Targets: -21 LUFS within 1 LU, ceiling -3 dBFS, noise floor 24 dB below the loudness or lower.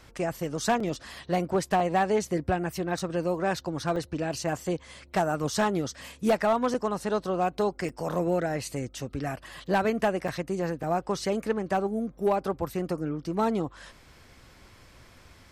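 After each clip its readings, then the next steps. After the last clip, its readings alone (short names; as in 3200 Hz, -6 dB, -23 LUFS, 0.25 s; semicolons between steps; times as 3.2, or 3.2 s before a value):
clipped 0.3%; flat tops at -17.0 dBFS; dropouts 8; longest dropout 3.8 ms; loudness -29.0 LUFS; peak -17.0 dBFS; loudness target -21.0 LUFS
-> clip repair -17 dBFS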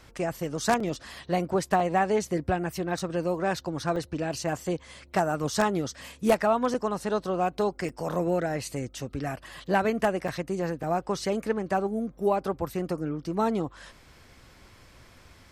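clipped 0.0%; dropouts 8; longest dropout 3.8 ms
-> interpolate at 0.8/1.8/2.99/3.96/6.74/7.89/10.28/10.83, 3.8 ms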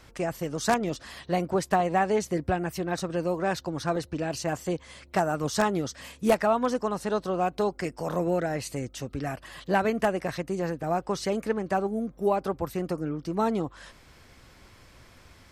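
dropouts 0; loudness -28.5 LUFS; peak -8.0 dBFS; loudness target -21.0 LUFS
-> gain +7.5 dB; limiter -3 dBFS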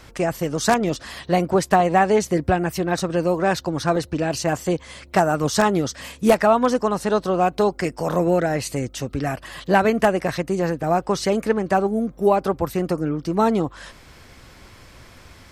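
loudness -21.0 LUFS; peak -3.0 dBFS; noise floor -47 dBFS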